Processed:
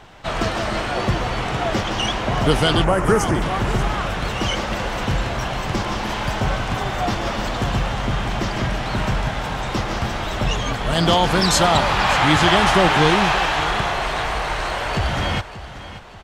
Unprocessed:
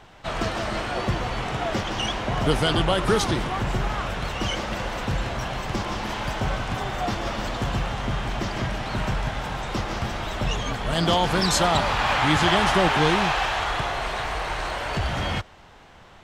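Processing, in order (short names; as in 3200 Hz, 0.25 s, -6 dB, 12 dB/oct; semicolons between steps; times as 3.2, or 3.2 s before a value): 2.84–3.42 Butterworth band-stop 3700 Hz, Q 0.97; feedback echo 0.584 s, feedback 41%, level -14.5 dB; gain +4.5 dB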